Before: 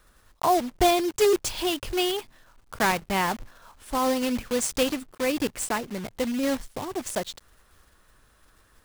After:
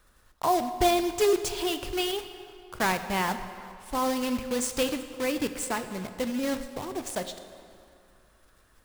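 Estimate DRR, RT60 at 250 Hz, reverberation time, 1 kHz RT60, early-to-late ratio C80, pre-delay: 9.0 dB, 2.5 s, 2.5 s, 2.6 s, 11.0 dB, 16 ms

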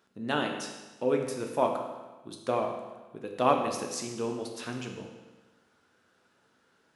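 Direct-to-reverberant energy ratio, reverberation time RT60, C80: 2.0 dB, 1.2 s, 7.0 dB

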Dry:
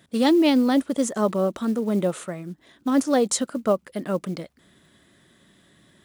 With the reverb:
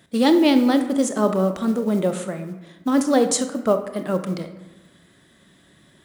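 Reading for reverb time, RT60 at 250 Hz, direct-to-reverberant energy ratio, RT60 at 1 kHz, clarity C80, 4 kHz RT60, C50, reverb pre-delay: 1.2 s, 1.3 s, 7.5 dB, 1.2 s, 12.5 dB, 0.65 s, 10.0 dB, 26 ms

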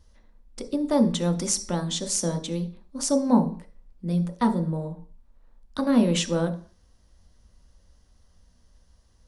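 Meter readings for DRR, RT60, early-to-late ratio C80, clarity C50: 5.0 dB, 0.45 s, 18.0 dB, 13.0 dB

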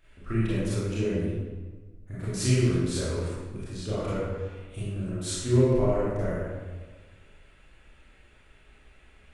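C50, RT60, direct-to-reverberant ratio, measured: -4.0 dB, 1.4 s, -10.5 dB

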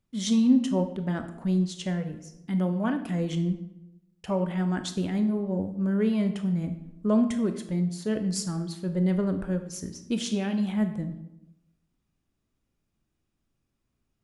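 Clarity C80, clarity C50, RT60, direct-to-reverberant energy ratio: 13.0 dB, 10.0 dB, 0.90 s, 7.5 dB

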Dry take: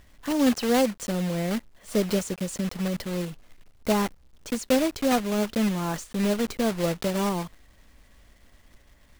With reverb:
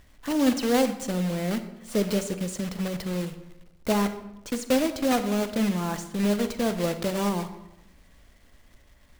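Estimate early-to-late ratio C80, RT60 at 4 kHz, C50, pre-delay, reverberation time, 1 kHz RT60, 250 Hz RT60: 13.5 dB, 0.60 s, 11.0 dB, 33 ms, 0.95 s, 0.90 s, 1.1 s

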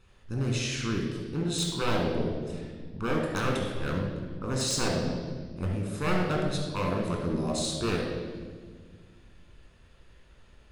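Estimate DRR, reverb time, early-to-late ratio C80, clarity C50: -1.0 dB, 1.6 s, 4.0 dB, 1.5 dB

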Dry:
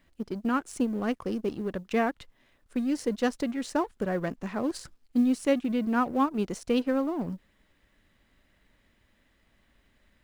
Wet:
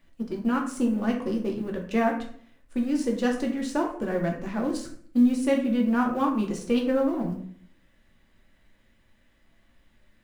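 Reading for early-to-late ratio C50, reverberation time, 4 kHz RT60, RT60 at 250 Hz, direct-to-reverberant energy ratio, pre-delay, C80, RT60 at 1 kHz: 7.5 dB, 0.55 s, 0.40 s, 0.70 s, 0.5 dB, 3 ms, 11.5 dB, 0.55 s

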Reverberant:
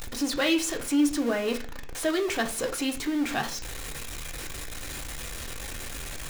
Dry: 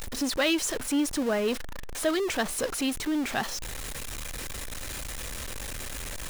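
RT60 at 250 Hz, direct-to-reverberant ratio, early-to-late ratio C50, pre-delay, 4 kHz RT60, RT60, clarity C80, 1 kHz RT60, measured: 0.60 s, 4.0 dB, 14.0 dB, 3 ms, 0.55 s, 0.45 s, 18.5 dB, 0.40 s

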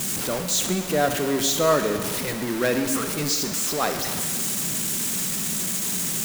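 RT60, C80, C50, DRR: 1.7 s, 8.5 dB, 7.0 dB, 6.0 dB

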